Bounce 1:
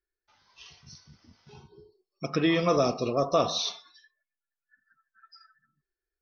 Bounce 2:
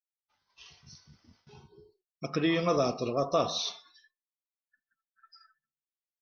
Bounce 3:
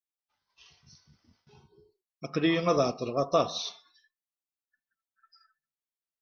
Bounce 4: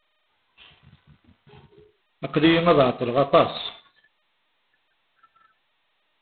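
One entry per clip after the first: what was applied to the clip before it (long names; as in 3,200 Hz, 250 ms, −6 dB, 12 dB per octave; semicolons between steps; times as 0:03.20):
downward expander −57 dBFS; level −3 dB
expander for the loud parts 1.5 to 1, over −37 dBFS; level +3 dB
level +8 dB; G.726 16 kbit/s 8,000 Hz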